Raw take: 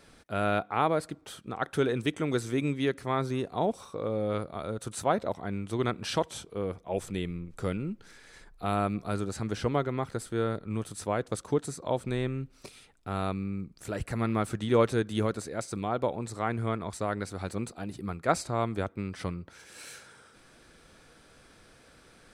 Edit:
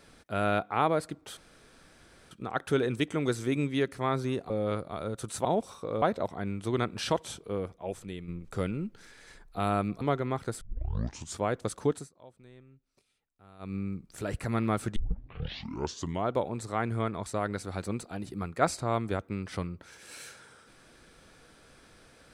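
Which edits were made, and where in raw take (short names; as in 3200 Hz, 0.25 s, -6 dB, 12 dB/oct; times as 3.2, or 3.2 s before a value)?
1.37 insert room tone 0.94 s
3.56–4.13 move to 5.08
6.61–7.34 fade out quadratic, to -7.5 dB
9.07–9.68 cut
10.28 tape start 0.81 s
11.6–13.43 dip -23 dB, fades 0.17 s
14.63 tape start 1.34 s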